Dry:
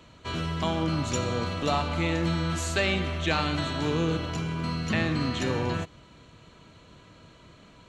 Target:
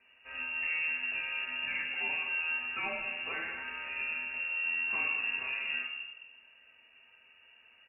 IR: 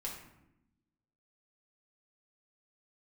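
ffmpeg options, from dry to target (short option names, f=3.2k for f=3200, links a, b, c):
-filter_complex "[0:a]asettb=1/sr,asplit=3[a][b][c];[a]atrim=end=3.224[d];[b]atrim=start=3.22:end=4.33,asetpts=PTS-STARTPTS,afade=t=in:d=0.004:c=qsin,afade=t=out:st=1.106:d=0.004:c=qsin,lowshelf=f=350:g=-6.5[e];[c]atrim=start=4.326[f];[d][e]acrossfade=d=0.004:c1=hsin:c2=qsin[g];[g][f]acrossfade=d=0.004:c1=qsin:c2=hsin,aecho=1:1:213:0.168[h];[1:a]atrim=start_sample=2205[i];[h][i]afir=irnorm=-1:irlink=0,lowpass=f=2.5k:t=q:w=0.5098,lowpass=f=2.5k:t=q:w=0.6013,lowpass=f=2.5k:t=q:w=0.9,lowpass=f=2.5k:t=q:w=2.563,afreqshift=-2900,volume=-9dB"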